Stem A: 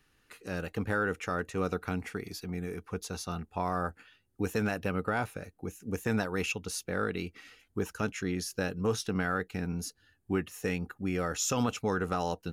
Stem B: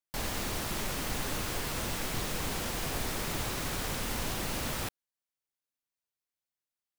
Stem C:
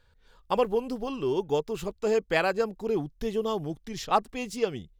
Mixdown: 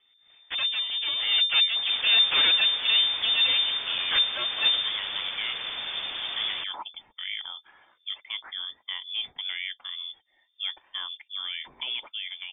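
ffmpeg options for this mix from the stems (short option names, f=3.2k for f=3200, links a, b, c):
-filter_complex "[0:a]acompressor=mode=upward:threshold=-45dB:ratio=2.5,adelay=300,volume=-10dB[a];[1:a]adelay=1750,volume=-6dB[b];[2:a]asoftclip=type=hard:threshold=-21.5dB,flanger=delay=0.3:depth=2:regen=-66:speed=1:shape=sinusoidal,aeval=exprs='abs(val(0))':c=same,volume=3dB,asplit=2[c][d];[d]apad=whole_len=565610[e];[a][e]sidechaincompress=threshold=-30dB:ratio=8:attack=16:release=368[f];[f][b][c]amix=inputs=3:normalize=0,dynaudnorm=f=220:g=9:m=7dB,lowpass=f=3.1k:t=q:w=0.5098,lowpass=f=3.1k:t=q:w=0.6013,lowpass=f=3.1k:t=q:w=0.9,lowpass=f=3.1k:t=q:w=2.563,afreqshift=-3600"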